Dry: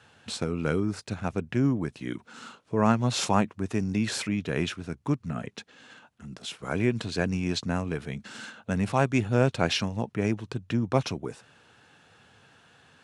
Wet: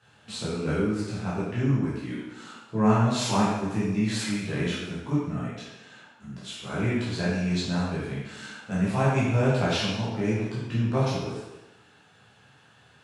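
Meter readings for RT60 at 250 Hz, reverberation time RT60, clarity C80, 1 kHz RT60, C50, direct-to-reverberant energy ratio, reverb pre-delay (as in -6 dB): 0.95 s, 1.1 s, 2.0 dB, 1.1 s, -1.0 dB, -9.5 dB, 10 ms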